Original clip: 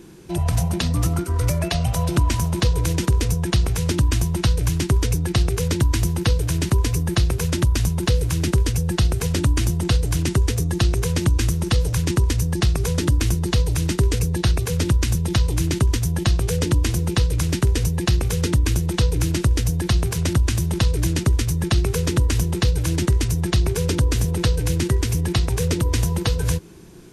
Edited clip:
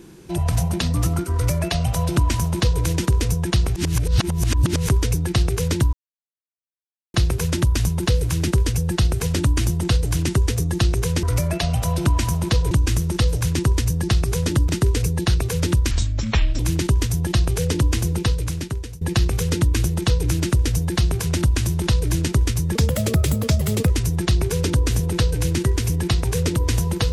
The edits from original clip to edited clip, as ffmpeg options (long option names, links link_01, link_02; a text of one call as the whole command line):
ffmpeg -i in.wav -filter_complex "[0:a]asplit=13[link_01][link_02][link_03][link_04][link_05][link_06][link_07][link_08][link_09][link_10][link_11][link_12][link_13];[link_01]atrim=end=3.762[link_14];[link_02]atrim=start=3.758:end=4.892,asetpts=PTS-STARTPTS,areverse[link_15];[link_03]atrim=start=4.888:end=5.93,asetpts=PTS-STARTPTS,afade=type=out:start_time=1.038:duration=0.004:curve=hsin[link_16];[link_04]atrim=start=5.93:end=7.14,asetpts=PTS-STARTPTS,volume=0[link_17];[link_05]atrim=start=7.14:end=11.232,asetpts=PTS-STARTPTS,afade=type=in:duration=0.004:curve=hsin[link_18];[link_06]atrim=start=1.338:end=2.822[link_19];[link_07]atrim=start=11.228:end=13.212[link_20];[link_08]atrim=start=13.858:end=15.084[link_21];[link_09]atrim=start=15.08:end=15.51,asetpts=PTS-STARTPTS,asetrate=27783,aresample=44100[link_22];[link_10]atrim=start=15.506:end=17.93,asetpts=PTS-STARTPTS,afade=type=out:start_time=1.554:duration=0.87:silence=0.0891251[link_23];[link_11]atrim=start=17.93:end=21.674,asetpts=PTS-STARTPTS,afade=type=in:duration=0.004:curve=hsin:silence=0.0891251[link_24];[link_12]atrim=start=21.67:end=23.15,asetpts=PTS-STARTPTS,asetrate=56889,aresample=44100,atrim=end_sample=50595,asetpts=PTS-STARTPTS[link_25];[link_13]atrim=start=23.146[link_26];[link_14][link_15]acrossfade=duration=0.004:curve1=hsin:curve2=hsin[link_27];[link_16][link_17][link_18]concat=n=3:v=0:a=1[link_28];[link_27][link_28]acrossfade=duration=0.004:curve1=hsin:curve2=hsin[link_29];[link_29][link_19]acrossfade=duration=0.004:curve1=hsin:curve2=hsin[link_30];[link_30][link_20]acrossfade=duration=0.004:curve1=hsin:curve2=hsin[link_31];[link_31][link_21]acrossfade=duration=0.004:curve1=hsin:curve2=hsin[link_32];[link_32][link_22]acrossfade=duration=0.004:curve1=hsin:curve2=hsin[link_33];[link_23][link_24]concat=n=2:v=0:a=1[link_34];[link_33][link_34]acrossfade=duration=0.004:curve1=hsin:curve2=hsin[link_35];[link_35][link_25]acrossfade=duration=0.004:curve1=hsin:curve2=hsin[link_36];[link_36][link_26]acrossfade=duration=0.004:curve1=hsin:curve2=hsin" out.wav